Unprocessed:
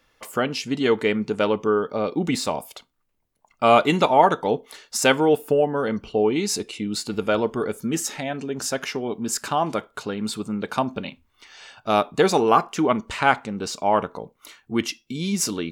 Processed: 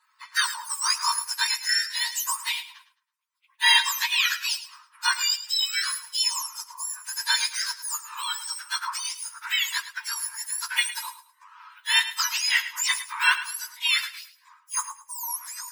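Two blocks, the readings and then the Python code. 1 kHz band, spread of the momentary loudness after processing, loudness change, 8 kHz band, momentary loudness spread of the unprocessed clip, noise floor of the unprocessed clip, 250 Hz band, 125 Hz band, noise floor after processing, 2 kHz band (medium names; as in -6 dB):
-9.5 dB, 10 LU, -2.0 dB, +3.5 dB, 12 LU, -69 dBFS, under -40 dB, under -40 dB, -66 dBFS, +4.0 dB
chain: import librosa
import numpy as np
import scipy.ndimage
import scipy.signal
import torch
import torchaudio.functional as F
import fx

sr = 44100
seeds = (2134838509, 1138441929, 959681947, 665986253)

p1 = fx.octave_mirror(x, sr, pivot_hz=1500.0)
p2 = fx.rider(p1, sr, range_db=3, speed_s=0.5)
p3 = fx.dynamic_eq(p2, sr, hz=1400.0, q=0.7, threshold_db=-36.0, ratio=4.0, max_db=3)
p4 = fx.brickwall_highpass(p3, sr, low_hz=880.0)
y = p4 + fx.echo_feedback(p4, sr, ms=107, feedback_pct=27, wet_db=-13.5, dry=0)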